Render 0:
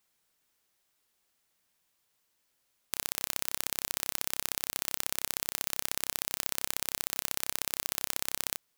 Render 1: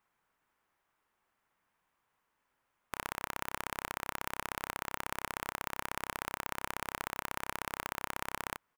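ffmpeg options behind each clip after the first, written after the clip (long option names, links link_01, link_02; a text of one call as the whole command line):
ffmpeg -i in.wav -af "firequalizer=gain_entry='entry(610,0);entry(950,7);entry(4100,-14)':delay=0.05:min_phase=1,volume=1dB" out.wav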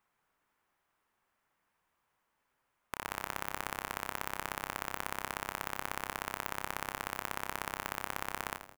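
ffmpeg -i in.wav -filter_complex "[0:a]asplit=6[link_01][link_02][link_03][link_04][link_05][link_06];[link_02]adelay=82,afreqshift=-110,volume=-10.5dB[link_07];[link_03]adelay=164,afreqshift=-220,volume=-16.7dB[link_08];[link_04]adelay=246,afreqshift=-330,volume=-22.9dB[link_09];[link_05]adelay=328,afreqshift=-440,volume=-29.1dB[link_10];[link_06]adelay=410,afreqshift=-550,volume=-35.3dB[link_11];[link_01][link_07][link_08][link_09][link_10][link_11]amix=inputs=6:normalize=0" out.wav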